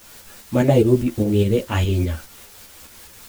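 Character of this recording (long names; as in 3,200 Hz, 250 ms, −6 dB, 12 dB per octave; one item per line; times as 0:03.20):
a quantiser's noise floor 8 bits, dither triangular
tremolo saw up 4.9 Hz, depth 45%
a shimmering, thickened sound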